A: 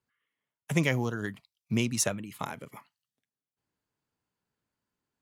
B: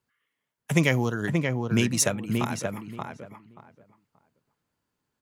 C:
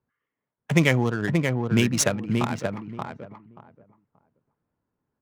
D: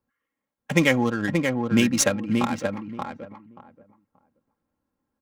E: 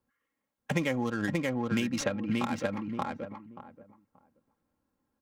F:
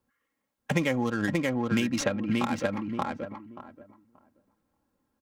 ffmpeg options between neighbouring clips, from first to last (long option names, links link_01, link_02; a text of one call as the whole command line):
ffmpeg -i in.wav -filter_complex "[0:a]asplit=2[link_01][link_02];[link_02]adelay=580,lowpass=frequency=1900:poles=1,volume=-3.5dB,asplit=2[link_03][link_04];[link_04]adelay=580,lowpass=frequency=1900:poles=1,volume=0.2,asplit=2[link_05][link_06];[link_06]adelay=580,lowpass=frequency=1900:poles=1,volume=0.2[link_07];[link_01][link_03][link_05][link_07]amix=inputs=4:normalize=0,volume=4.5dB" out.wav
ffmpeg -i in.wav -af "adynamicsmooth=sensitivity=7:basefreq=1400,volume=2.5dB" out.wav
ffmpeg -i in.wav -af "aecho=1:1:3.7:0.59" out.wav
ffmpeg -i in.wav -filter_complex "[0:a]acrossover=split=1200|4700[link_01][link_02][link_03];[link_01]acompressor=threshold=-28dB:ratio=4[link_04];[link_02]acompressor=threshold=-37dB:ratio=4[link_05];[link_03]acompressor=threshold=-50dB:ratio=4[link_06];[link_04][link_05][link_06]amix=inputs=3:normalize=0" out.wav
ffmpeg -i in.wav -filter_complex "[0:a]asplit=2[link_01][link_02];[link_02]adelay=583.1,volume=-20dB,highshelf=frequency=4000:gain=-13.1[link_03];[link_01][link_03]amix=inputs=2:normalize=0,volume=3dB" out.wav